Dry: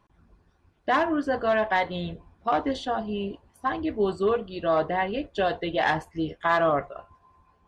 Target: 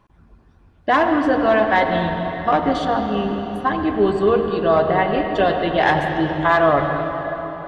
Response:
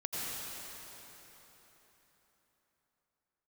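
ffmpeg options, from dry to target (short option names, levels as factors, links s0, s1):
-filter_complex "[0:a]asplit=2[s0][s1];[1:a]atrim=start_sample=2205,lowpass=4100,lowshelf=f=200:g=7[s2];[s1][s2]afir=irnorm=-1:irlink=0,volume=0.501[s3];[s0][s3]amix=inputs=2:normalize=0,volume=1.58"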